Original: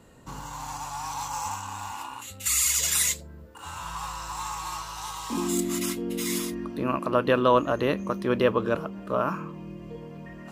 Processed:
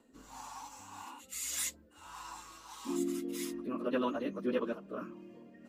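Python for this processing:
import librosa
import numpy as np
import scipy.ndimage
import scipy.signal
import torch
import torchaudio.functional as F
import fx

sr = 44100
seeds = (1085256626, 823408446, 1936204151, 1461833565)

y = fx.low_shelf_res(x, sr, hz=190.0, db=-8.0, q=3.0)
y = fx.rotary(y, sr, hz=0.9)
y = fx.stretch_vocoder_free(y, sr, factor=0.54)
y = y * librosa.db_to_amplitude(-7.0)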